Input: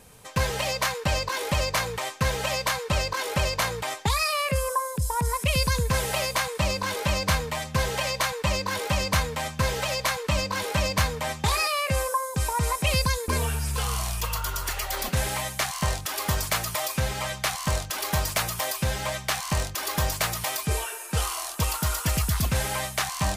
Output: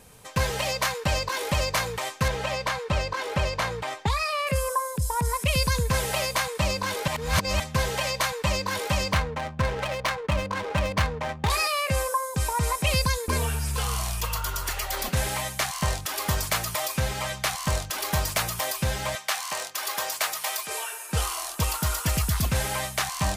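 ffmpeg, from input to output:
-filter_complex "[0:a]asettb=1/sr,asplit=3[a][b][c];[a]atrim=end=2.284[d];[b]atrim=start=2.28:end=4.47,asetpts=PTS-STARTPTS,afade=t=in:d=0.004:c=qsin,afade=t=out:st=2.186:d=0.004:c=qsin,aemphasis=mode=reproduction:type=50kf[e];[c]atrim=start=4.466[f];[d][e]acrossfade=d=0.004:c1=hsin:c2=qsin[g];[g][f]acrossfade=d=0.004:c1=qsin:c2=hsin,asettb=1/sr,asplit=3[h][i][j];[h]atrim=end=9.124[k];[i]atrim=start=9.12:end=11.5,asetpts=PTS-STARTPTS,afade=t=in:d=0.004:c=qsin,afade=t=out:st=2.376:d=0.004:c=qsin,adynamicsmooth=sensitivity=3.5:basefreq=640[l];[j]atrim=start=11.496[m];[k][l]acrossfade=d=0.004:c1=hsin:c2=qsin[n];[n][m]acrossfade=d=0.004:c1=qsin:c2=hsin,asettb=1/sr,asplit=3[o][p][q];[o]atrim=end=19.154[r];[p]atrim=start=19.15:end=21.09,asetpts=PTS-STARTPTS,afade=t=in:d=0.004:c=qsin,afade=t=out:st=1.936:d=0.004:c=qsin,highpass=580[s];[q]atrim=start=21.086[t];[r][s]acrossfade=d=0.004:c1=hsin:c2=qsin[u];[u][t]acrossfade=d=0.004:c1=qsin:c2=hsin,asplit=3[v][w][x];[v]atrim=end=7.082[y];[w]atrim=start=7.078:end=7.602,asetpts=PTS-STARTPTS,areverse[z];[x]atrim=start=7.598[aa];[y][z]acrossfade=d=0.004:c1=hsin:c2=hsin[ab];[ab][aa]acrossfade=d=0.004:c1=hsin:c2=hsin"

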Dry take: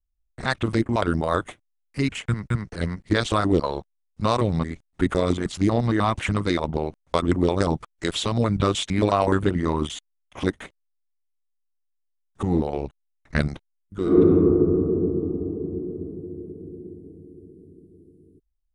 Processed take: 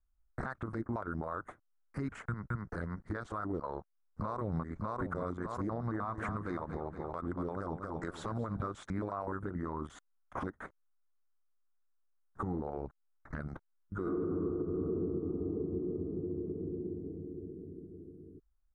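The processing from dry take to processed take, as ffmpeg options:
-filter_complex "[0:a]asplit=2[a][b];[b]afade=t=in:st=3.6:d=0.01,afade=t=out:st=4.65:d=0.01,aecho=0:1:600|1200|1800|2400|3000:0.630957|0.252383|0.100953|0.0403813|0.0161525[c];[a][c]amix=inputs=2:normalize=0,asettb=1/sr,asplit=3[d][e][f];[d]atrim=end=5.704[g];[e]atrim=start=5.7:end=8.7,asetpts=PTS-STARTPTS,afade=t=in:d=0.004:c=qsin,afade=t=out:st=2.996:d=0.004:c=qsin,aecho=1:1:234|468|702|936:0.251|0.1|0.0402|0.0161,atrim=end_sample=132300[h];[f]atrim=start=8.696[i];[g][h]acrossfade=d=0.004:c1=hsin:c2=qsin[j];[j][i]acrossfade=d=0.004:c1=qsin:c2=hsin,highshelf=f=2k:t=q:w=3:g=-12.5,acompressor=threshold=-36dB:ratio=2.5,alimiter=level_in=3.5dB:limit=-24dB:level=0:latency=1:release=159,volume=-3.5dB,volume=1dB"

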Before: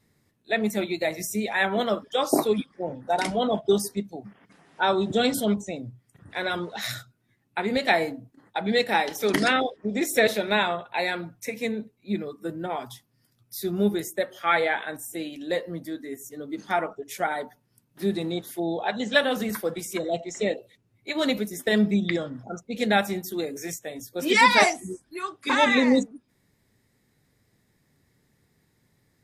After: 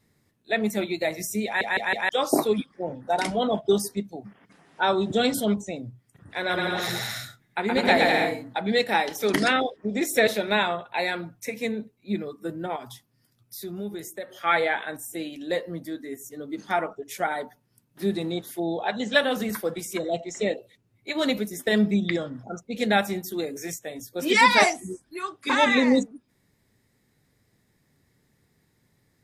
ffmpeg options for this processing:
-filter_complex "[0:a]asettb=1/sr,asplit=3[a][b][c];[a]atrim=end=6.374[d];[b]atrim=start=6.37:end=8.6,asetpts=PTS-STARTPTS,afade=t=in:d=0.004:c=qsin,afade=t=out:st=2.226:d=0.004:c=qsin,aecho=1:1:120|204|262.8|304|332.8:0.794|0.631|0.501|0.398|0.316,atrim=end_sample=98343[e];[c]atrim=start=8.596[f];[d][e]acrossfade=d=0.004:c1=hsin:c2=qsin[g];[g][f]acrossfade=d=0.004:c1=qsin:c2=hsin,asettb=1/sr,asplit=3[h][i][j];[h]atrim=end=12.764[k];[i]atrim=start=12.76:end=14.3,asetpts=PTS-STARTPTS,afade=t=in:d=0.004:c=qsin,afade=t=out:st=1.536:d=0.004:c=qsin,acompressor=threshold=-37dB:ratio=2:attack=3.2:release=140:knee=1:detection=peak[l];[j]atrim=start=14.296[m];[k][l]acrossfade=d=0.004:c1=hsin:c2=qsin[n];[n][m]acrossfade=d=0.004:c1=qsin:c2=hsin,asplit=5[o][p][q][r][s];[o]atrim=end=1.612[t];[p]atrim=start=1.448:end=1.612[u];[q]atrim=start=1.448:end=1.612[v];[r]atrim=start=1.448:end=1.612[w];[s]atrim=start=2.088[x];[t][u]acrossfade=d=0.004:c1=hsin:c2=hsin[y];[y][v]acrossfade=d=0.004:c1=hsin:c2=hsin[z];[z][w]acrossfade=d=0.004:c1=hsin:c2=hsin[aa];[aa][x]acrossfade=d=0.004:c1=hsin:c2=hsin"

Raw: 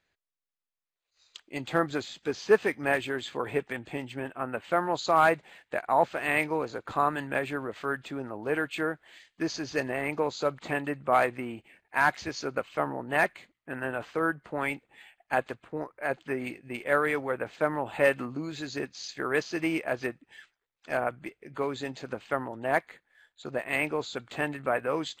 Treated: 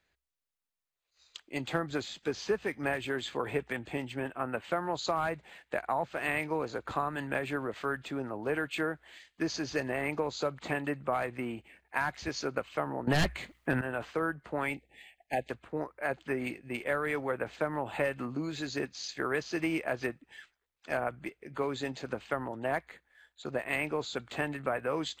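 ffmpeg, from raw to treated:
-filter_complex "[0:a]asettb=1/sr,asplit=3[a][b][c];[a]atrim=end=13.074[d];[b]atrim=start=13.07:end=13.81,asetpts=PTS-STARTPTS,afade=t=in:d=0.004:c=qsin,afade=t=out:st=0.736:d=0.004:c=qsin,aeval=exprs='0.282*sin(PI/2*3.55*val(0)/0.282)':c=same[e];[c]atrim=start=13.806[f];[d][e]acrossfade=d=0.004:c1=hsin:c2=qsin[g];[g][f]acrossfade=d=0.004:c1=qsin:c2=hsin,asettb=1/sr,asplit=3[h][i][j];[h]atrim=end=14.744[k];[i]atrim=start=14.74:end=15.5,asetpts=PTS-STARTPTS,afade=t=in:d=0.004:c=qsin,afade=t=out:st=0.756:d=0.004:c=qsin,asuperstop=centerf=1200:order=8:qfactor=1.2[l];[j]atrim=start=15.496[m];[k][l]acrossfade=d=0.004:c1=hsin:c2=qsin[n];[n][m]acrossfade=d=0.004:c1=qsin:c2=hsin,equalizer=f=61:t=o:w=0.24:g=12.5,acrossover=split=160[o][p];[p]acompressor=threshold=-27dB:ratio=10[q];[o][q]amix=inputs=2:normalize=0"

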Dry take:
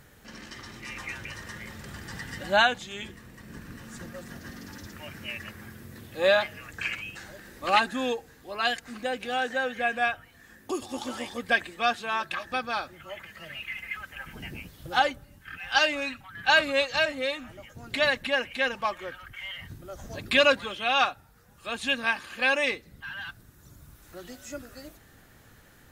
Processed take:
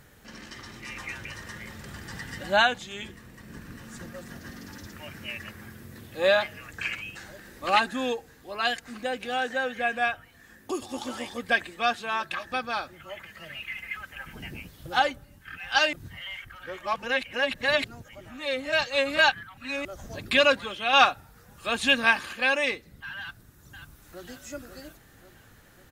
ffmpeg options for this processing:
-filter_complex "[0:a]asettb=1/sr,asplit=3[a][b][c];[a]atrim=end=20.934[d];[b]atrim=start=20.93:end=22.33,asetpts=PTS-STARTPTS,afade=t=in:d=0.004:c=qsin,afade=t=out:st=1.396:d=0.004:c=qsin,acontrast=39[e];[c]atrim=start=22.326[f];[d][e]acrossfade=d=0.004:c1=hsin:c2=qsin[g];[g][f]acrossfade=d=0.004:c1=qsin:c2=hsin,asplit=2[h][i];[i]afade=t=in:st=23.19:d=0.01,afade=t=out:st=24.26:d=0.01,aecho=0:1:540|1080|1620|2160|2700|3240|3780:0.398107|0.218959|0.120427|0.0662351|0.0364293|0.0200361|0.0110199[j];[h][j]amix=inputs=2:normalize=0,asplit=3[k][l][m];[k]atrim=end=15.932[n];[l]atrim=start=15.928:end=19.852,asetpts=PTS-STARTPTS,areverse[o];[m]atrim=start=19.848[p];[n][o]acrossfade=d=0.004:c1=hsin:c2=hsin[q];[q][p]acrossfade=d=0.004:c1=hsin:c2=hsin"

